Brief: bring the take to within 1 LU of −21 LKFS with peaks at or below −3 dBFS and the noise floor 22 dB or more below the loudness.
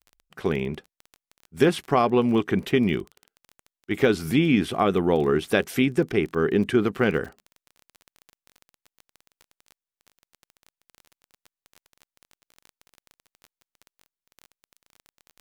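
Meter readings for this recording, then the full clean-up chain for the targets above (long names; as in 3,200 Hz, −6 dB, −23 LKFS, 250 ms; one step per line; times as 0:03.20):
crackle rate 18 per second; integrated loudness −23.0 LKFS; sample peak −5.5 dBFS; target loudness −21.0 LKFS
→ click removal
level +2 dB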